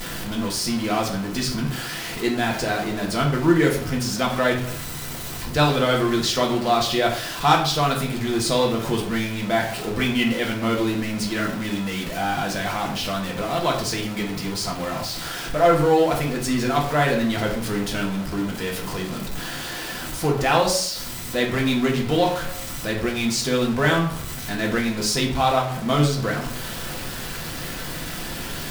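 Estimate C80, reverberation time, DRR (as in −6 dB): 11.0 dB, 0.55 s, −1.0 dB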